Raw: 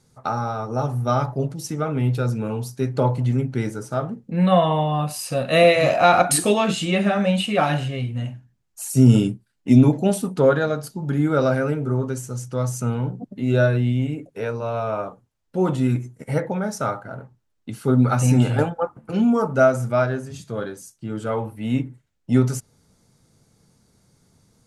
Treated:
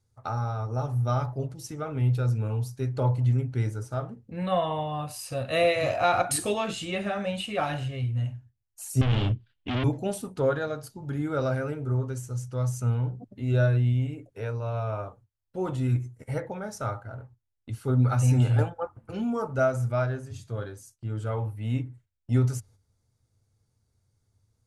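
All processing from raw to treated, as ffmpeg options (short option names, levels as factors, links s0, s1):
-filter_complex "[0:a]asettb=1/sr,asplit=3[s0][s1][s2];[s0]atrim=end=9.014[s3];[s1]atrim=start=9.01:end=9.84,asetpts=PTS-STARTPTS,afade=t=in:d=0.004:c=qsin,afade=t=out:st=0.826:d=0.004:c=qsin,acontrast=64,asoftclip=type=hard:threshold=0.112,lowpass=f=3200:t=q:w=3.7[s4];[s2]atrim=start=9.836[s5];[s3][s4]acrossfade=d=0.004:c1=hsin:c2=qsin[s6];[s6][s5]acrossfade=d=0.004:c1=qsin:c2=hsin,agate=range=0.355:threshold=0.00398:ratio=16:detection=peak,lowshelf=f=130:t=q:w=3:g=7.5,volume=0.398"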